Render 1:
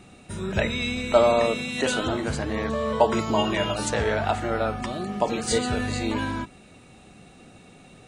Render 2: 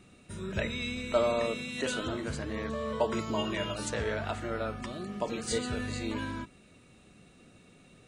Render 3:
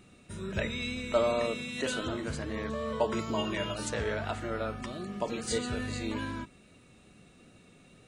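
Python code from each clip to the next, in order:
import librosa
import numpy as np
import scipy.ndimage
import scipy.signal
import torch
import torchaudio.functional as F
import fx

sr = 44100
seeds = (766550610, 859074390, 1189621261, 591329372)

y1 = fx.peak_eq(x, sr, hz=790.0, db=-9.0, octaves=0.32)
y1 = y1 * librosa.db_to_amplitude(-7.5)
y2 = fx.wow_flutter(y1, sr, seeds[0], rate_hz=2.1, depth_cents=19.0)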